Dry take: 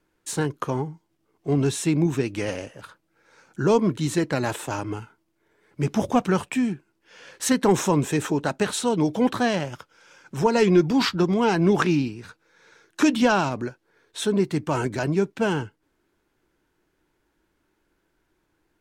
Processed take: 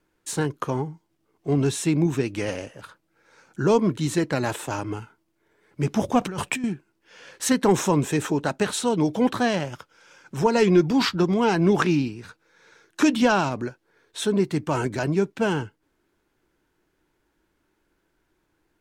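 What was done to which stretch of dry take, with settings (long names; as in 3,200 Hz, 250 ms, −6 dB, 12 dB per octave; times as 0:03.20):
0:06.21–0:06.64: compressor whose output falls as the input rises −29 dBFS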